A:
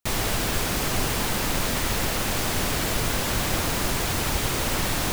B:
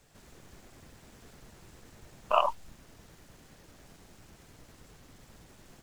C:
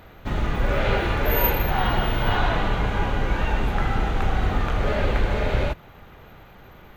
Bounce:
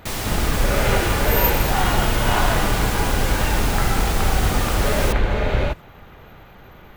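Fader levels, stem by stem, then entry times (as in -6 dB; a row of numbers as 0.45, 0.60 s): -1.0, -4.0, +2.5 dB; 0.00, 0.00, 0.00 s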